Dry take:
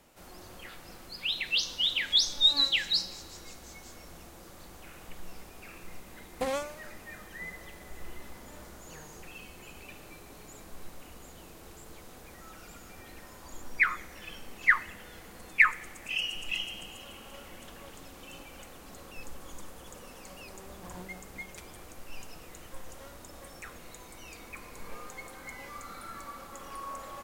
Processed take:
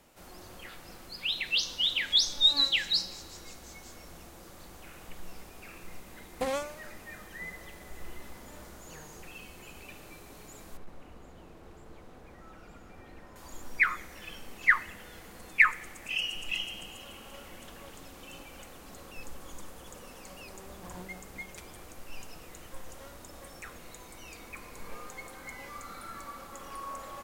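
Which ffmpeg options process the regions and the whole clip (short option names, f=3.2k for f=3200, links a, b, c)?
-filter_complex "[0:a]asettb=1/sr,asplit=3[a][b][c];[a]atrim=end=10.774[d];[b]atrim=start=10.77:end=13.36,asetpts=PTS-STARTPTS,afade=t=in:d=0.004:c=qsin,afade=t=out:st=2.586:d=0.004:c=qsin,lowpass=f=1.4k:p=1,asoftclip=type=hard:threshold=-35dB[e];[c]atrim=start=13.356[f];[d][e]acrossfade=d=0.004:c1=hsin:c2=qsin[g];[g][f]acrossfade=d=0.004:c1=qsin:c2=hsin"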